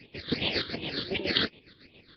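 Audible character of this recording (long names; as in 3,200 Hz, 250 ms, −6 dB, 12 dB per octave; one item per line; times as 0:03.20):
phaser sweep stages 8, 2.7 Hz, lowest notch 730–1,500 Hz
chopped level 7.2 Hz, depth 60%, duty 45%
Nellymoser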